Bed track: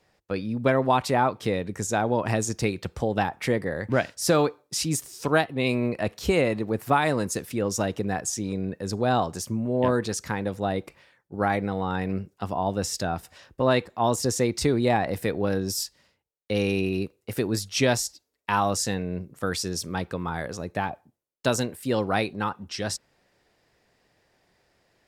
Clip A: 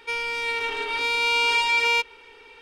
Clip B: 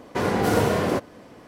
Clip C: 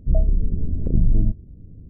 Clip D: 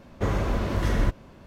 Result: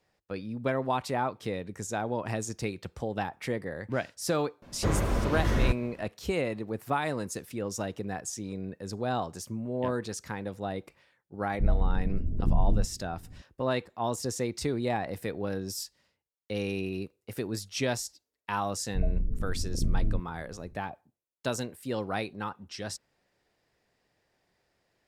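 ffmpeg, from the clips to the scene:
-filter_complex "[3:a]asplit=2[a][b];[0:a]volume=-7.5dB[c];[4:a]atrim=end=1.46,asetpts=PTS-STARTPTS,volume=-2dB,afade=t=in:d=0.004:c=hsin,afade=t=out:st=1.456:d=0.004:c=hsin,adelay=4620[d];[a]atrim=end=1.89,asetpts=PTS-STARTPTS,volume=-7dB,afade=t=in:d=0.004:c=hsin,afade=t=out:st=1.886:d=0.004:c=hsin,adelay=11530[e];[b]atrim=end=1.89,asetpts=PTS-STARTPTS,volume=-10dB,afade=t=in:d=0.004:c=hsin,afade=t=out:st=1.886:d=0.004:c=hsin,adelay=18880[f];[c][d][e][f]amix=inputs=4:normalize=0"

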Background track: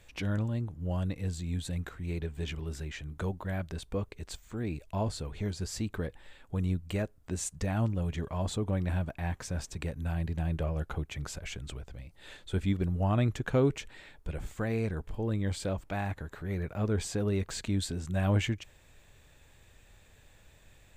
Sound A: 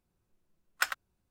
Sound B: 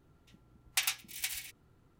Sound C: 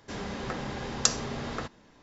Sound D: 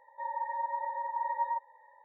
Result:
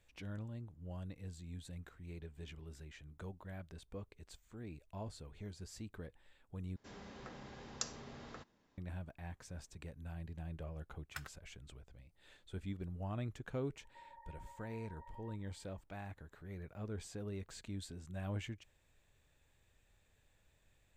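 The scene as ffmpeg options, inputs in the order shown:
-filter_complex "[0:a]volume=-14dB[a];[4:a]acompressor=threshold=-39dB:ratio=6:attack=3.2:release=140:knee=1:detection=peak[b];[a]asplit=2[c][d];[c]atrim=end=6.764[e];[3:a]atrim=end=2.02,asetpts=PTS-STARTPTS,volume=-16.5dB[f];[d]atrim=start=8.776[g];[1:a]atrim=end=1.3,asetpts=PTS-STARTPTS,volume=-17.5dB,afade=t=in:d=0.004:c=hsin,afade=t=out:st=1.296:d=0.004:c=hsin,adelay=455994S[h];[b]atrim=end=2.04,asetpts=PTS-STARTPTS,volume=-15.5dB,afade=t=in:d=0.004:c=hsin,afade=t=out:st=2.036:d=0.004:c=hsin,adelay=13770[i];[e][f]acrossfade=d=0.004:c1=hsin:c2=hsin[j];[j][g]acrossfade=d=0.004:c1=hsin:c2=hsin[k];[k][h][i]amix=inputs=3:normalize=0"

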